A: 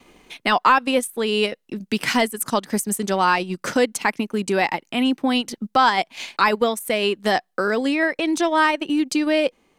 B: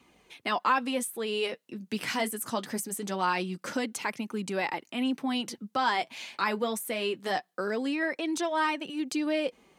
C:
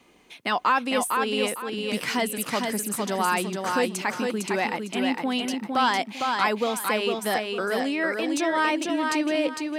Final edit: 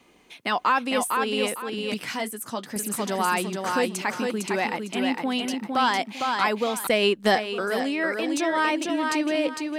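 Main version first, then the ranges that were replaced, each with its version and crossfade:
C
0:01.94–0:02.76: punch in from B
0:06.87–0:07.35: punch in from A

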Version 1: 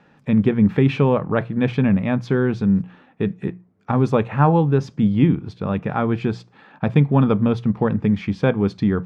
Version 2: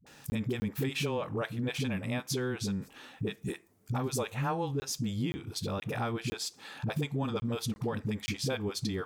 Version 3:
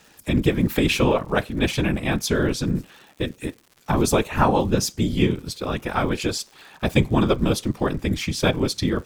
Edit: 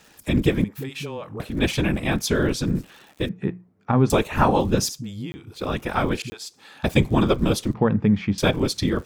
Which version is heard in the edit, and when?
3
0:00.64–0:01.40: punch in from 2
0:03.29–0:04.10: punch in from 1
0:04.89–0:05.55: punch in from 2
0:06.22–0:06.84: punch in from 2
0:07.74–0:08.38: punch in from 1

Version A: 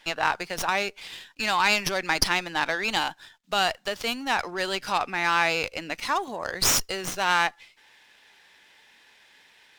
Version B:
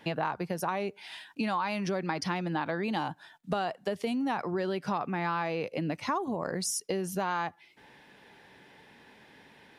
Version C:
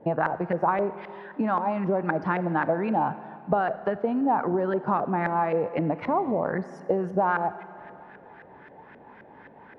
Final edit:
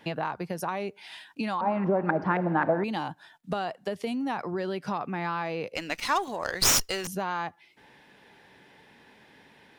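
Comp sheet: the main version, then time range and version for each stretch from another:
B
0:01.61–0:02.84: punch in from C
0:05.75–0:07.07: punch in from A

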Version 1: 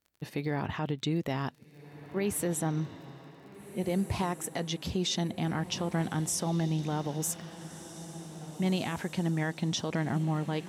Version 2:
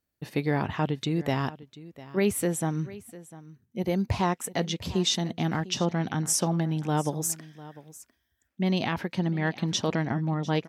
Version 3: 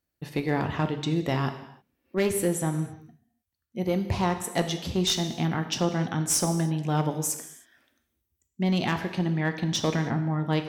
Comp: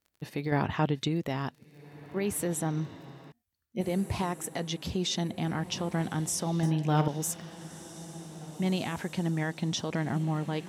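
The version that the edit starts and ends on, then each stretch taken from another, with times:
1
0:00.52–0:01.08: punch in from 2
0:03.32–0:03.81: punch in from 3
0:06.63–0:07.08: punch in from 3

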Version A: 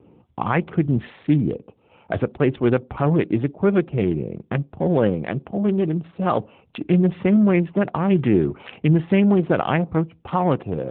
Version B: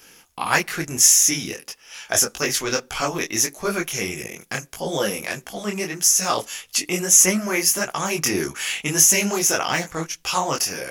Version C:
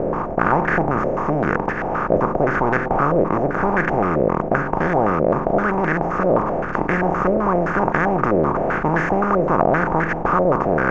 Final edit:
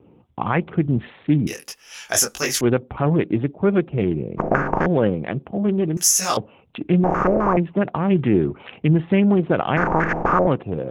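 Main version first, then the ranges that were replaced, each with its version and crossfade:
A
0:01.47–0:02.61: punch in from B
0:04.38–0:04.86: punch in from C
0:05.97–0:06.37: punch in from B
0:07.04–0:07.57: punch in from C
0:09.77–0:10.47: punch in from C

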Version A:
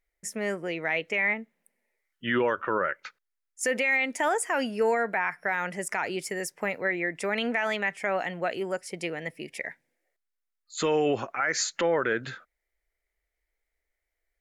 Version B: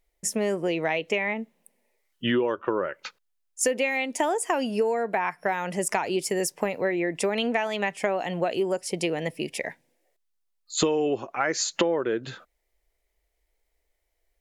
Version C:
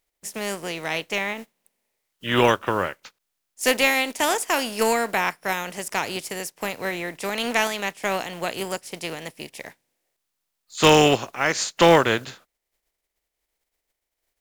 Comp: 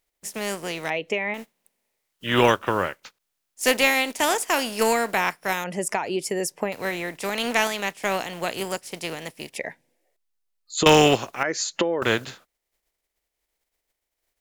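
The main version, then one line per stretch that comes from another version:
C
0:00.90–0:01.34: punch in from B
0:05.64–0:06.72: punch in from B
0:09.56–0:10.86: punch in from B
0:11.43–0:12.02: punch in from B
not used: A

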